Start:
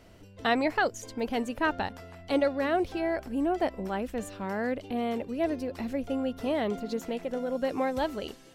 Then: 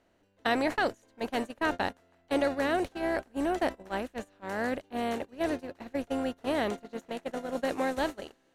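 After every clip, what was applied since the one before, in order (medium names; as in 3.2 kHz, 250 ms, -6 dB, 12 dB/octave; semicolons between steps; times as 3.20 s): spectral levelling over time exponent 0.6; gate -26 dBFS, range -25 dB; dynamic bell 9.7 kHz, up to +6 dB, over -56 dBFS, Q 0.79; trim -4 dB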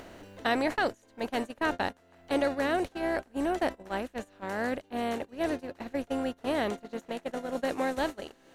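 upward compressor, threshold -31 dBFS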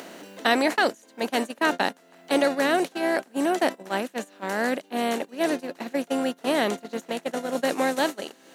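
steep high-pass 160 Hz 36 dB/octave; treble shelf 3.5 kHz +7.5 dB; trim +5.5 dB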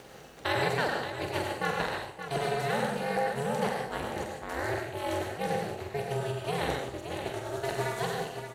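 plate-style reverb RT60 0.57 s, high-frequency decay 0.85×, pre-delay 80 ms, DRR 2 dB; ring modulator 140 Hz; multi-tap echo 46/575 ms -6.5/-9 dB; trim -6.5 dB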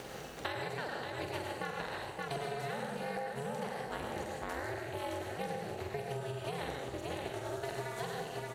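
compression 10:1, threshold -39 dBFS, peak gain reduction 16.5 dB; trim +4 dB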